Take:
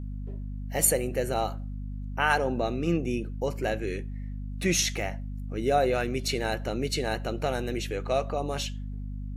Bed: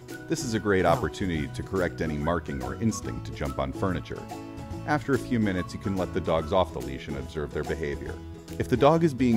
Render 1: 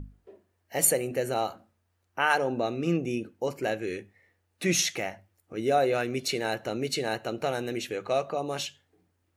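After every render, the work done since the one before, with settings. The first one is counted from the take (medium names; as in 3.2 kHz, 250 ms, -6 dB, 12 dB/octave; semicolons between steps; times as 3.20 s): hum notches 50/100/150/200/250 Hz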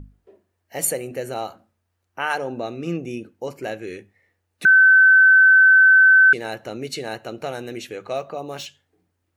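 4.65–6.33 s: bleep 1.53 kHz -8.5 dBFS; 8.16–8.66 s: decimation joined by straight lines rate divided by 2×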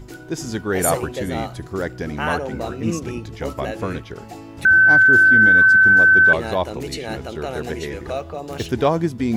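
add bed +1.5 dB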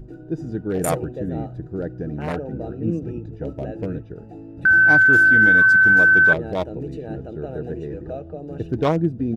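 local Wiener filter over 41 samples; comb 6.4 ms, depth 32%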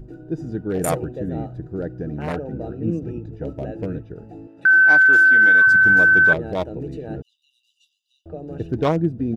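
4.47–5.67 s: frequency weighting A; 7.22–8.26 s: brick-wall FIR high-pass 2.7 kHz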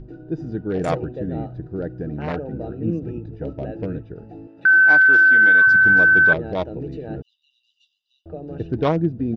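low-pass 5.2 kHz 24 dB/octave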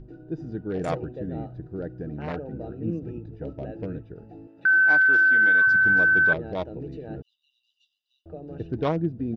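trim -5.5 dB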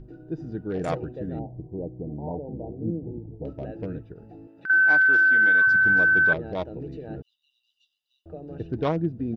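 1.39–3.45 s: brick-wall FIR low-pass 1 kHz; 4.12–4.70 s: compression 2.5:1, threshold -40 dBFS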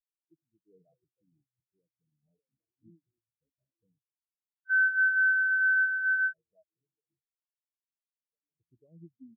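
peak limiter -19 dBFS, peak gain reduction 9.5 dB; spectral contrast expander 4:1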